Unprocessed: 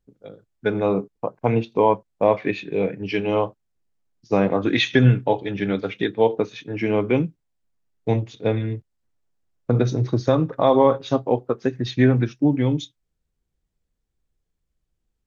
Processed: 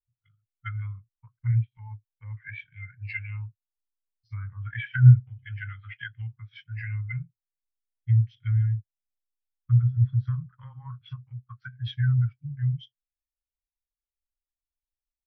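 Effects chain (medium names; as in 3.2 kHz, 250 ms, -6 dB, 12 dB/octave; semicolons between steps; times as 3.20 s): formant shift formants -2 st; low-pass that closes with the level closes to 1.1 kHz, closed at -15.5 dBFS; elliptic band-stop 110–1400 Hz, stop band 40 dB; spectral contrast expander 1.5:1; trim +8.5 dB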